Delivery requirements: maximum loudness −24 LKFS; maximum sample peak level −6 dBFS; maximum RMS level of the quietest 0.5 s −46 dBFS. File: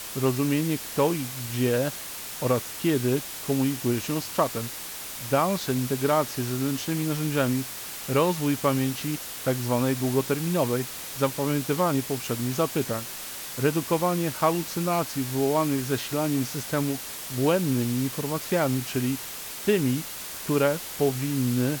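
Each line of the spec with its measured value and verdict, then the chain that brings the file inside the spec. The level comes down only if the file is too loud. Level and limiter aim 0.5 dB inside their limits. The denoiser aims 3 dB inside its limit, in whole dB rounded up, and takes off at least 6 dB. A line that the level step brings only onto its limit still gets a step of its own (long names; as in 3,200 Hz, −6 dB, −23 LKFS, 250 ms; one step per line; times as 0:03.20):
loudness −26.5 LKFS: in spec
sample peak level −9.0 dBFS: in spec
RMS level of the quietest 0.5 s −37 dBFS: out of spec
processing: broadband denoise 12 dB, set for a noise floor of −37 dBFS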